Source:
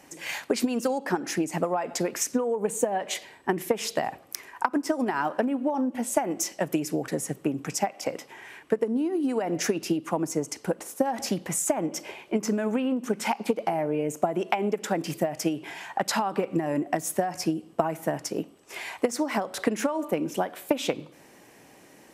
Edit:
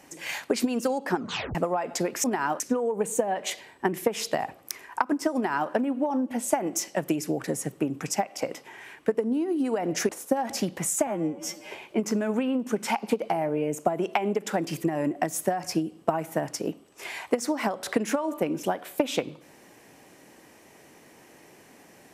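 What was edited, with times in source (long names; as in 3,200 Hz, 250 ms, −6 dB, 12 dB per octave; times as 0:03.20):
0:01.16: tape stop 0.39 s
0:04.99–0:05.35: duplicate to 0:02.24
0:09.73–0:10.78: remove
0:11.76–0:12.08: time-stretch 2×
0:15.21–0:16.55: remove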